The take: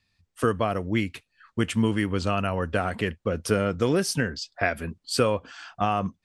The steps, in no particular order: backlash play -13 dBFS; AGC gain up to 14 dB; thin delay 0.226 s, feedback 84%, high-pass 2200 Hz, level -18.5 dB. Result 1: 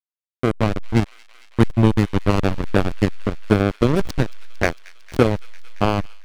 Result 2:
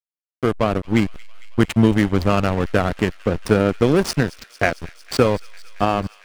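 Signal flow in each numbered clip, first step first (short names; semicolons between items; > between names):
backlash > thin delay > AGC; AGC > backlash > thin delay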